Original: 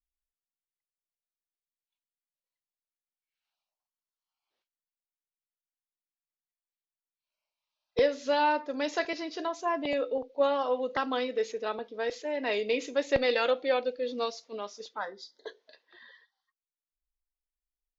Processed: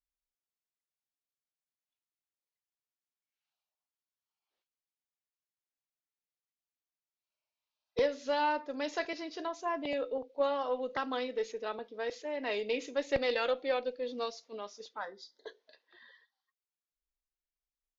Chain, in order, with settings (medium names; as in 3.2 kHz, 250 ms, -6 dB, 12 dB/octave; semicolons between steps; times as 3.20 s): Chebyshev shaper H 6 -39 dB, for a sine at -13 dBFS; resampled via 16 kHz; loudspeaker Doppler distortion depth 0.15 ms; trim -4.5 dB